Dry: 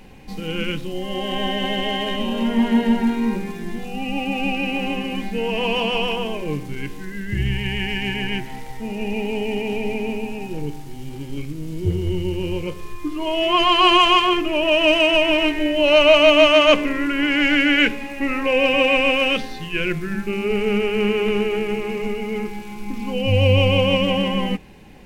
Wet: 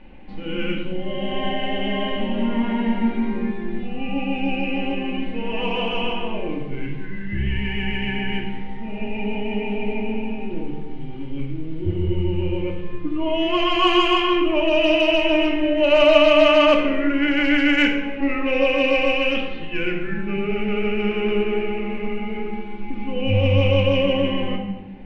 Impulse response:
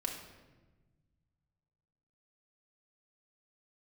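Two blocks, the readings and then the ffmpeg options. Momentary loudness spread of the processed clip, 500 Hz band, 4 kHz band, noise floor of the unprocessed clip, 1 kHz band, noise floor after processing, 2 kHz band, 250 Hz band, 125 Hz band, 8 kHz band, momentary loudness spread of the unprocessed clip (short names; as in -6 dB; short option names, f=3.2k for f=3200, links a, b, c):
14 LU, -1.0 dB, -4.5 dB, -33 dBFS, -3.5 dB, -30 dBFS, -3.0 dB, 0.0 dB, -1.0 dB, under -10 dB, 17 LU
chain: -filter_complex "[0:a]lowpass=f=3.1k:w=0.5412,lowpass=f=3.1k:w=1.3066,asplit=2[a][b];[b]acontrast=59,volume=1dB[c];[a][c]amix=inputs=2:normalize=0[d];[1:a]atrim=start_sample=2205,asetrate=52920,aresample=44100[e];[d][e]afir=irnorm=-1:irlink=0,volume=-11.5dB"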